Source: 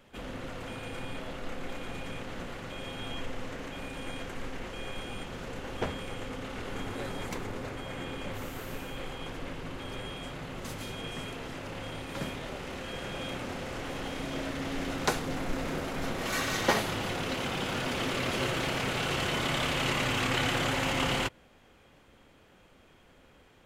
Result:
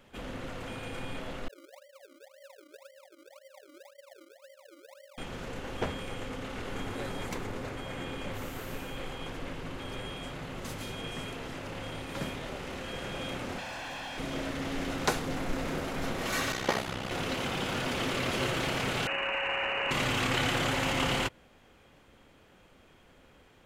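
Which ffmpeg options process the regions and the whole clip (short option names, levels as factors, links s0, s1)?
-filter_complex "[0:a]asettb=1/sr,asplit=3[s0][s1][s2];[s0]atrim=end=1.484[s3];[s1]atrim=start=1.48:end=5.18,asetpts=PTS-STARTPTS,afade=t=in:d=0.004:c=qsin,afade=t=out:st=3.696:d=0.004:c=qsin,asuperpass=centerf=570:order=12:qfactor=7.9,acrusher=samples=34:mix=1:aa=0.000001:lfo=1:lforange=34:lforate=1.9[s4];[s2]atrim=start=5.176[s5];[s3][s4]acrossfade=d=0.004:c1=hsin:c2=qsin[s6];[s6][s5]acrossfade=d=0.004:c1=qsin:c2=hsin,asettb=1/sr,asplit=3[s7][s8][s9];[s7]atrim=end=13.584[s10];[s8]atrim=start=13.58:end=14.18,asetpts=PTS-STARTPTS,afade=t=in:d=0.004:c=qsin,afade=t=out:st=0.596:d=0.004:c=qsin,aecho=1:1:1.2:0.63,atrim=end_sample=26460,acrossover=split=490|2600[s11][s12][s13];[s11]acompressor=threshold=0.00447:ratio=4[s14];[s12]acompressor=threshold=0.00316:ratio=4[s15];[s13]acompressor=threshold=0.00355:ratio=4[s16];[s14][s15][s16]amix=inputs=3:normalize=0,asplit=2[s17][s18];[s18]highpass=f=720:p=1,volume=12.6,asoftclip=type=tanh:threshold=0.0335[s19];[s17][s19]amix=inputs=2:normalize=0,lowpass=f=2200:p=1,volume=0.501[s20];[s9]atrim=start=14.176[s21];[s10][s20]acrossfade=d=0.004:c1=hsin:c2=qsin[s22];[s22][s21]acrossfade=d=0.004:c1=qsin:c2=hsin,asettb=1/sr,asplit=3[s23][s24][s25];[s23]atrim=end=16.524[s26];[s24]atrim=start=16.52:end=17.11,asetpts=PTS-STARTPTS,afade=t=in:d=0.004:c=qsin,afade=t=out:st=0.586:d=0.004:c=qsin,highshelf=f=11000:g=-7.5,tremolo=f=64:d=0.788[s27];[s25]atrim=start=17.106[s28];[s26][s27]acrossfade=d=0.004:c1=hsin:c2=qsin[s29];[s29][s28]acrossfade=d=0.004:c1=qsin:c2=hsin,asettb=1/sr,asplit=3[s30][s31][s32];[s30]atrim=end=19.074[s33];[s31]atrim=start=19.07:end=19.91,asetpts=PTS-STARTPTS,afade=t=in:d=0.004:c=qsin,afade=t=out:st=0.836:d=0.004:c=qsin,lowpass=f=2600:t=q:w=0.5098,lowpass=f=2600:t=q:w=0.6013,lowpass=f=2600:t=q:w=0.9,lowpass=f=2600:t=q:w=2.563,afreqshift=-3000,asplit=2[s34][s35];[s35]highpass=f=720:p=1,volume=2.51,asoftclip=type=tanh:threshold=0.133[s36];[s34][s36]amix=inputs=2:normalize=0,lowpass=f=1600:p=1,volume=0.501,aeval=exprs='val(0)+0.0141*sin(2*PI*550*n/s)':c=same[s37];[s32]atrim=start=19.906[s38];[s33][s37]acrossfade=d=0.004:c1=hsin:c2=qsin[s39];[s39][s38]acrossfade=d=0.004:c1=qsin:c2=hsin"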